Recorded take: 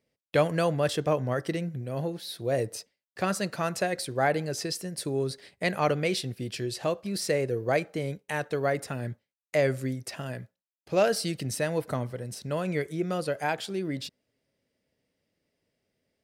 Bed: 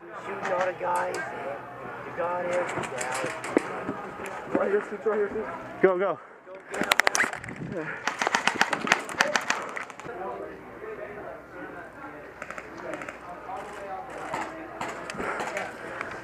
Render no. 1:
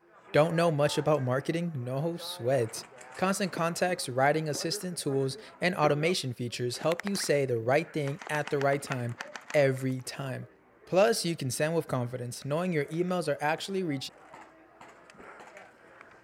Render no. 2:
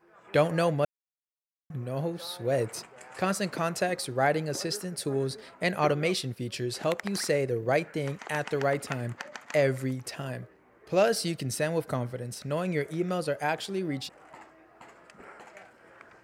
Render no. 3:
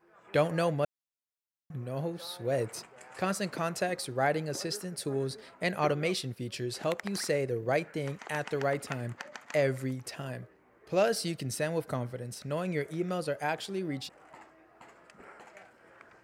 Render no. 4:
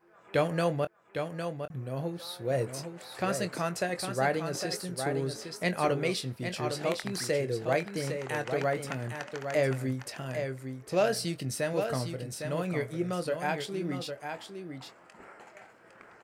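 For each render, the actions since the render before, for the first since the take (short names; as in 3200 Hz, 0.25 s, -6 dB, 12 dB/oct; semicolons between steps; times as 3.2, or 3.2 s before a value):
add bed -17.5 dB
0.85–1.7 mute
gain -3 dB
doubler 23 ms -11 dB; echo 0.807 s -7 dB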